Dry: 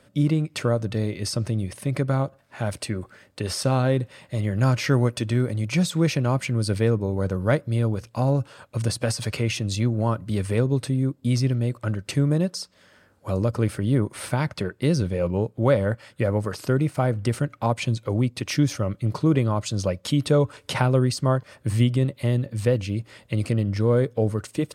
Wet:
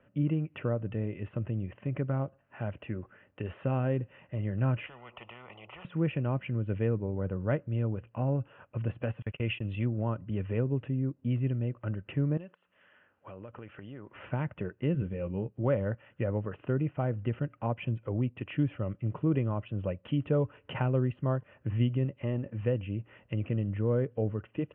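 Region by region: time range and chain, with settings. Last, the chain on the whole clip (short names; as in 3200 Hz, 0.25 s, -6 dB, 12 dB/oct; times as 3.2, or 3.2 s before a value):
4.86–5.85 fixed phaser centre 670 Hz, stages 4 + spectral compressor 10:1
9.22–9.85 gate -30 dBFS, range -32 dB + bell 5800 Hz +11 dB 2.3 oct
12.37–14.13 tilt +3 dB/oct + compressor 5:1, threshold -33 dBFS
14.93–15.64 LPF 7900 Hz + bell 670 Hz -5.5 dB 1.9 oct + doubler 15 ms -8 dB
22.21–22.61 LPF 2900 Hz + bell 130 Hz -6.5 dB 0.7 oct + sample leveller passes 1
whole clip: steep low-pass 3000 Hz 96 dB/oct; notch 2200 Hz, Q 11; dynamic EQ 1200 Hz, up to -4 dB, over -40 dBFS, Q 0.81; gain -7.5 dB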